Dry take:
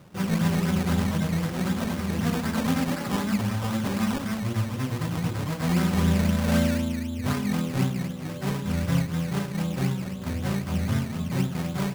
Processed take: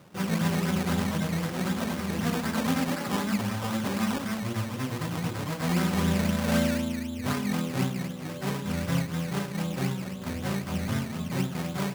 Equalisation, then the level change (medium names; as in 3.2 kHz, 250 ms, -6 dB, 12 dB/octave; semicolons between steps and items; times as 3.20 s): bass shelf 110 Hz -11 dB; 0.0 dB